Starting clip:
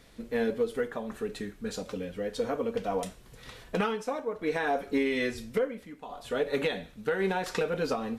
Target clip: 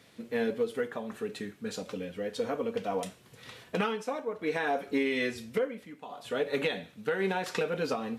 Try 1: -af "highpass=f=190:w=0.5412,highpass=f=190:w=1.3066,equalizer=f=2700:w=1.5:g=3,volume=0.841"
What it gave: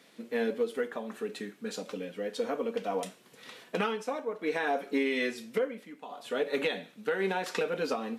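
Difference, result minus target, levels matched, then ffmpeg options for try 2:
125 Hz band -4.5 dB
-af "highpass=f=94:w=0.5412,highpass=f=94:w=1.3066,equalizer=f=2700:w=1.5:g=3,volume=0.841"

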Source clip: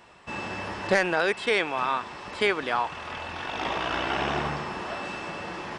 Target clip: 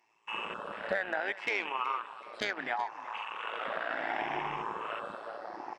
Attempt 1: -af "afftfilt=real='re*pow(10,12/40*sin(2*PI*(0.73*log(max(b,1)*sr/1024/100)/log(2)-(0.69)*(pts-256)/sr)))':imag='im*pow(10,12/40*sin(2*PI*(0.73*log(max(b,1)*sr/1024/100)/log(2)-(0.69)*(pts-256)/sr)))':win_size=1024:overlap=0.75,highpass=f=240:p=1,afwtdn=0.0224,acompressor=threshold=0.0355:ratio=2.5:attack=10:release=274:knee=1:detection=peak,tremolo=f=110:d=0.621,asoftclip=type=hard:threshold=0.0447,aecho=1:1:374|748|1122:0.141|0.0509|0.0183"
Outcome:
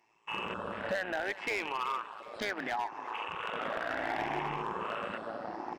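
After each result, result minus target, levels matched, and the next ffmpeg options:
hard clipper: distortion +21 dB; 250 Hz band +4.5 dB
-af "afftfilt=real='re*pow(10,12/40*sin(2*PI*(0.73*log(max(b,1)*sr/1024/100)/log(2)-(0.69)*(pts-256)/sr)))':imag='im*pow(10,12/40*sin(2*PI*(0.73*log(max(b,1)*sr/1024/100)/log(2)-(0.69)*(pts-256)/sr)))':win_size=1024:overlap=0.75,highpass=f=240:p=1,afwtdn=0.0224,acompressor=threshold=0.0355:ratio=2.5:attack=10:release=274:knee=1:detection=peak,tremolo=f=110:d=0.621,asoftclip=type=hard:threshold=0.112,aecho=1:1:374|748|1122:0.141|0.0509|0.0183"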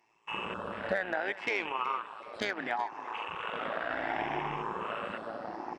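250 Hz band +4.0 dB
-af "afftfilt=real='re*pow(10,12/40*sin(2*PI*(0.73*log(max(b,1)*sr/1024/100)/log(2)-(0.69)*(pts-256)/sr)))':imag='im*pow(10,12/40*sin(2*PI*(0.73*log(max(b,1)*sr/1024/100)/log(2)-(0.69)*(pts-256)/sr)))':win_size=1024:overlap=0.75,highpass=f=580:p=1,afwtdn=0.0224,acompressor=threshold=0.0355:ratio=2.5:attack=10:release=274:knee=1:detection=peak,tremolo=f=110:d=0.621,asoftclip=type=hard:threshold=0.112,aecho=1:1:374|748|1122:0.141|0.0509|0.0183"

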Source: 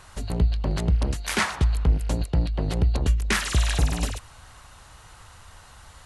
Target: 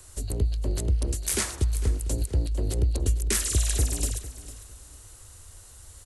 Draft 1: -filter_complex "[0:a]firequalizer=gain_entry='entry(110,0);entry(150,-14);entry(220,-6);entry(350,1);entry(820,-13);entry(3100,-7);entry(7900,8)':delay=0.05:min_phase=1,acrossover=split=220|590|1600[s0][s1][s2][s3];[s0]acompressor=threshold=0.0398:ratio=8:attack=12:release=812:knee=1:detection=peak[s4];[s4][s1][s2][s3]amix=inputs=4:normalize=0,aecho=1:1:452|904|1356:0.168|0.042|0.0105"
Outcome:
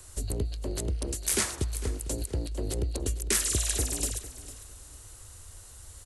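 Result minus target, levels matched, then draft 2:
compression: peak gain reduction +8 dB
-filter_complex "[0:a]firequalizer=gain_entry='entry(110,0);entry(150,-14);entry(220,-6);entry(350,1);entry(820,-13);entry(3100,-7);entry(7900,8)':delay=0.05:min_phase=1,acrossover=split=220|590|1600[s0][s1][s2][s3];[s0]acompressor=threshold=0.112:ratio=8:attack=12:release=812:knee=1:detection=peak[s4];[s4][s1][s2][s3]amix=inputs=4:normalize=0,aecho=1:1:452|904|1356:0.168|0.042|0.0105"

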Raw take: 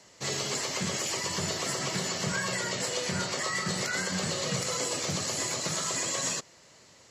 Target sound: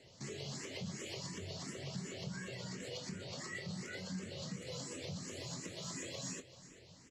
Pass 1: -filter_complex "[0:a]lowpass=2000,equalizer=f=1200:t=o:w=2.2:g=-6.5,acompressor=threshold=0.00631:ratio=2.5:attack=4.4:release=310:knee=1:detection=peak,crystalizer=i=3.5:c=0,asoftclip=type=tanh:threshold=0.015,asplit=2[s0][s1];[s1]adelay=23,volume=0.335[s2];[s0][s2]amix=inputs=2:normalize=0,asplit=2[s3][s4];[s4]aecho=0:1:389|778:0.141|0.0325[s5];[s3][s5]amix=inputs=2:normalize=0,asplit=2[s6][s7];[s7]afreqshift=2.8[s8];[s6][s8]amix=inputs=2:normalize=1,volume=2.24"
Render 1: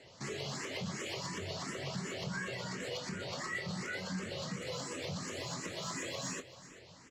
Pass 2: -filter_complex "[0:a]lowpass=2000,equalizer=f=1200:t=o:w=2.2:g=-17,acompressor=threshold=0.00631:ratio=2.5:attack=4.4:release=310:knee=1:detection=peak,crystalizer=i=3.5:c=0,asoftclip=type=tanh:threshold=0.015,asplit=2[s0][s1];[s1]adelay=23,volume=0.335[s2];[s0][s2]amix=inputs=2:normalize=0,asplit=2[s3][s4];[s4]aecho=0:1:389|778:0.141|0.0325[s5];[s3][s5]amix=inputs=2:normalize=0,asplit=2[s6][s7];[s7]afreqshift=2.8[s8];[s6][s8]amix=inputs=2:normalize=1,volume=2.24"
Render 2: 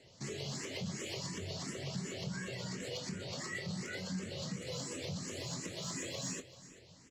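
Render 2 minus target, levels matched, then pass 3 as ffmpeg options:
compression: peak gain reduction -4 dB
-filter_complex "[0:a]lowpass=2000,equalizer=f=1200:t=o:w=2.2:g=-17,acompressor=threshold=0.00299:ratio=2.5:attack=4.4:release=310:knee=1:detection=peak,crystalizer=i=3.5:c=0,asoftclip=type=tanh:threshold=0.015,asplit=2[s0][s1];[s1]adelay=23,volume=0.335[s2];[s0][s2]amix=inputs=2:normalize=0,asplit=2[s3][s4];[s4]aecho=0:1:389|778:0.141|0.0325[s5];[s3][s5]amix=inputs=2:normalize=0,asplit=2[s6][s7];[s7]afreqshift=2.8[s8];[s6][s8]amix=inputs=2:normalize=1,volume=2.24"

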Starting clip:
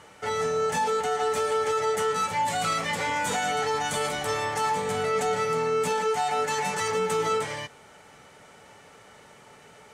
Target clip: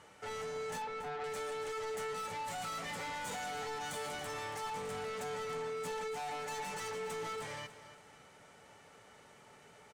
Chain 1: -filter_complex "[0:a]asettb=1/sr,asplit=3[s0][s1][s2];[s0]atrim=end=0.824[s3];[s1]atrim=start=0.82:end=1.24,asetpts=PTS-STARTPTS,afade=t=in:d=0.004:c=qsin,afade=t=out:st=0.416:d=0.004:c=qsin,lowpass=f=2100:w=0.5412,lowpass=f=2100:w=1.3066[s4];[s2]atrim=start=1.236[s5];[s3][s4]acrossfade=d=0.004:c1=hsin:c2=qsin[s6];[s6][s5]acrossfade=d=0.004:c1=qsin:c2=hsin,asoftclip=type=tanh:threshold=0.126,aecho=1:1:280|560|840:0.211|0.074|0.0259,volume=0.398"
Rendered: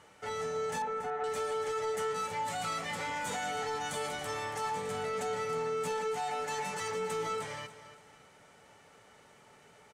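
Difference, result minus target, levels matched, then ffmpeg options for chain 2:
saturation: distortion -14 dB
-filter_complex "[0:a]asettb=1/sr,asplit=3[s0][s1][s2];[s0]atrim=end=0.824[s3];[s1]atrim=start=0.82:end=1.24,asetpts=PTS-STARTPTS,afade=t=in:d=0.004:c=qsin,afade=t=out:st=0.416:d=0.004:c=qsin,lowpass=f=2100:w=0.5412,lowpass=f=2100:w=1.3066[s4];[s2]atrim=start=1.236[s5];[s3][s4]acrossfade=d=0.004:c1=hsin:c2=qsin[s6];[s6][s5]acrossfade=d=0.004:c1=qsin:c2=hsin,asoftclip=type=tanh:threshold=0.0316,aecho=1:1:280|560|840:0.211|0.074|0.0259,volume=0.398"

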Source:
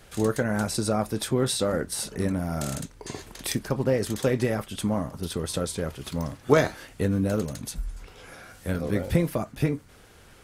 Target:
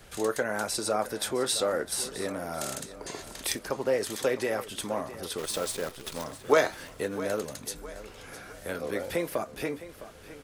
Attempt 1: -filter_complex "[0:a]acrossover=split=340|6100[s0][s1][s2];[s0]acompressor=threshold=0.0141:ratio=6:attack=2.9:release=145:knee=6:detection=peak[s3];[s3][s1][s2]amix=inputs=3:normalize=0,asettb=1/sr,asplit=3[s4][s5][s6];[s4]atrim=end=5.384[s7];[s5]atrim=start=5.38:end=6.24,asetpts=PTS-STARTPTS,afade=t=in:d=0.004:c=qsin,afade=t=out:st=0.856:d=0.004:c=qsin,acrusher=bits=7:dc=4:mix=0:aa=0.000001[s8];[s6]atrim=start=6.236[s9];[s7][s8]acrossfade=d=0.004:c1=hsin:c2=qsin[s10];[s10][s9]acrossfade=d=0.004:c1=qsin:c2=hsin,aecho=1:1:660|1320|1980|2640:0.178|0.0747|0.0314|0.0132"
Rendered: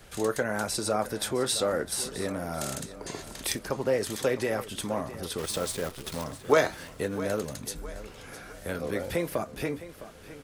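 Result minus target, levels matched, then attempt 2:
compression: peak gain reduction -7.5 dB
-filter_complex "[0:a]acrossover=split=340|6100[s0][s1][s2];[s0]acompressor=threshold=0.00501:ratio=6:attack=2.9:release=145:knee=6:detection=peak[s3];[s3][s1][s2]amix=inputs=3:normalize=0,asettb=1/sr,asplit=3[s4][s5][s6];[s4]atrim=end=5.384[s7];[s5]atrim=start=5.38:end=6.24,asetpts=PTS-STARTPTS,afade=t=in:d=0.004:c=qsin,afade=t=out:st=0.856:d=0.004:c=qsin,acrusher=bits=7:dc=4:mix=0:aa=0.000001[s8];[s6]atrim=start=6.236[s9];[s7][s8]acrossfade=d=0.004:c1=hsin:c2=qsin[s10];[s10][s9]acrossfade=d=0.004:c1=qsin:c2=hsin,aecho=1:1:660|1320|1980|2640:0.178|0.0747|0.0314|0.0132"

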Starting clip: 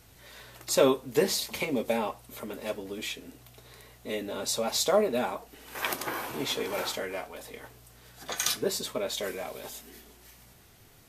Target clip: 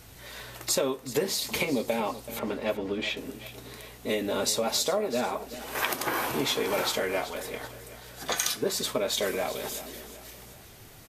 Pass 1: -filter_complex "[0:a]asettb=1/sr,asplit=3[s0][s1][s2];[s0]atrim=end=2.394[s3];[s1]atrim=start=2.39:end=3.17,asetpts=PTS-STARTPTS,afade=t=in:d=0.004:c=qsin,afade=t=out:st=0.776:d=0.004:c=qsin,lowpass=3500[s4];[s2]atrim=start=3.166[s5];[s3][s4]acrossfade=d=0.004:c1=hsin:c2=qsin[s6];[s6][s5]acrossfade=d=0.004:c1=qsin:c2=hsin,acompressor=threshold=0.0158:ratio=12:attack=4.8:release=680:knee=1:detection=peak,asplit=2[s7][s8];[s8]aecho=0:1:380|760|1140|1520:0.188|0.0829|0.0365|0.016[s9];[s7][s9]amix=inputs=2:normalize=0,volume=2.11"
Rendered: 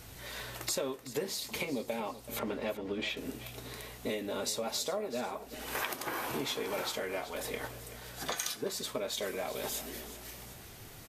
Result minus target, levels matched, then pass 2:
compression: peak gain reduction +8 dB
-filter_complex "[0:a]asettb=1/sr,asplit=3[s0][s1][s2];[s0]atrim=end=2.394[s3];[s1]atrim=start=2.39:end=3.17,asetpts=PTS-STARTPTS,afade=t=in:d=0.004:c=qsin,afade=t=out:st=0.776:d=0.004:c=qsin,lowpass=3500[s4];[s2]atrim=start=3.166[s5];[s3][s4]acrossfade=d=0.004:c1=hsin:c2=qsin[s6];[s6][s5]acrossfade=d=0.004:c1=qsin:c2=hsin,acompressor=threshold=0.0422:ratio=12:attack=4.8:release=680:knee=1:detection=peak,asplit=2[s7][s8];[s8]aecho=0:1:380|760|1140|1520:0.188|0.0829|0.0365|0.016[s9];[s7][s9]amix=inputs=2:normalize=0,volume=2.11"

